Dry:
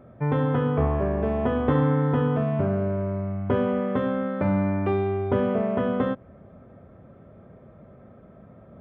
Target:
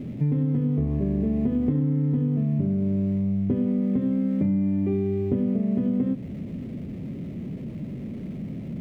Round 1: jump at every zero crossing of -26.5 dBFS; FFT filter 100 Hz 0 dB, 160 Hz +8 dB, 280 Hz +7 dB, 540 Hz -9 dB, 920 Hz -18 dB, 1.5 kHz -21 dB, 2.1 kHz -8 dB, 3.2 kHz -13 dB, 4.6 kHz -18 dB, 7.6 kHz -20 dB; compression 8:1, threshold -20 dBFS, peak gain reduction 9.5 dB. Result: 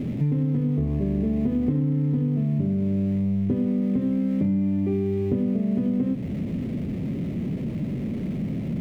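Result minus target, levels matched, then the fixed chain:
jump at every zero crossing: distortion +6 dB
jump at every zero crossing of -33.5 dBFS; FFT filter 100 Hz 0 dB, 160 Hz +8 dB, 280 Hz +7 dB, 540 Hz -9 dB, 920 Hz -18 dB, 1.5 kHz -21 dB, 2.1 kHz -8 dB, 3.2 kHz -13 dB, 4.6 kHz -18 dB, 7.6 kHz -20 dB; compression 8:1, threshold -20 dBFS, peak gain reduction 9 dB

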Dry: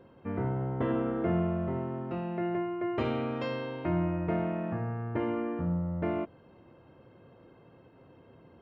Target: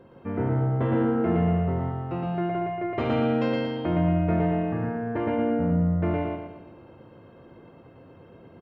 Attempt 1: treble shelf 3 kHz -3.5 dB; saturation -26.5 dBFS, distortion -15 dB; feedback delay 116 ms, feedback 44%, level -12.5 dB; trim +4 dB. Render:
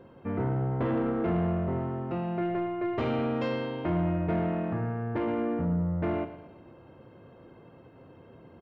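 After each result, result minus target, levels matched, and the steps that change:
echo-to-direct -11.5 dB; saturation: distortion +9 dB
change: feedback delay 116 ms, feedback 44%, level -1 dB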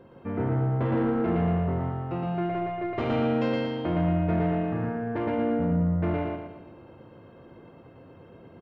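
saturation: distortion +9 dB
change: saturation -20 dBFS, distortion -25 dB

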